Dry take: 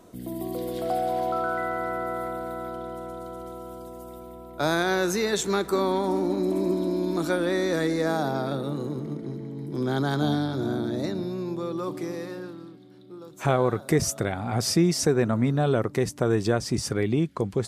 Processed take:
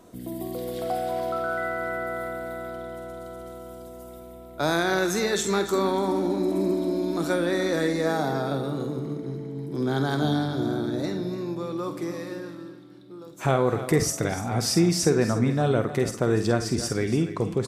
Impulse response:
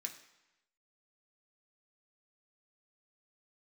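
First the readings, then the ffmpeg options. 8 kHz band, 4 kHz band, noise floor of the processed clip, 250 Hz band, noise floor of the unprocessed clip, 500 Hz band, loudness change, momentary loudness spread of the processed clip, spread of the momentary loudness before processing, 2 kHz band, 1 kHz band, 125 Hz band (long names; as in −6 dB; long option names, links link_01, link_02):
+1.5 dB, +1.0 dB, −43 dBFS, +0.5 dB, −45 dBFS, +0.5 dB, +0.5 dB, 16 LU, 14 LU, +1.5 dB, −0.5 dB, +0.5 dB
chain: -filter_complex "[0:a]aecho=1:1:292|584:0.224|0.0381,asplit=2[link_01][link_02];[1:a]atrim=start_sample=2205,adelay=48[link_03];[link_02][link_03]afir=irnorm=-1:irlink=0,volume=-5dB[link_04];[link_01][link_04]amix=inputs=2:normalize=0"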